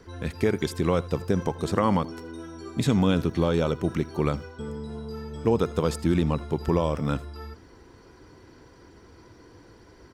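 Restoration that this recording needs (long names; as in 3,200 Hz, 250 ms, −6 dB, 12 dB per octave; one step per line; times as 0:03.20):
echo removal 80 ms −21.5 dB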